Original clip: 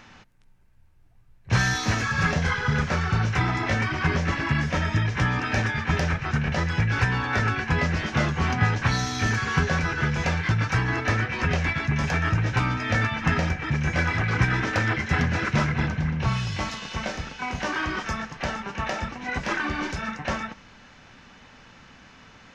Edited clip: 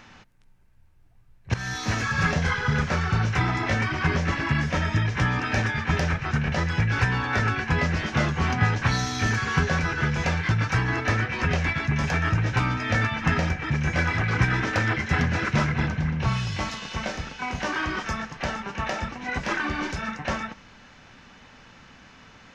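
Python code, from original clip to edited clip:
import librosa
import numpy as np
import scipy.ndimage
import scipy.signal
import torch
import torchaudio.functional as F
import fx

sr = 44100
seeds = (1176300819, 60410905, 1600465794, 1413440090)

y = fx.edit(x, sr, fx.fade_in_from(start_s=1.54, length_s=0.66, curve='qsin', floor_db=-17.0), tone=tone)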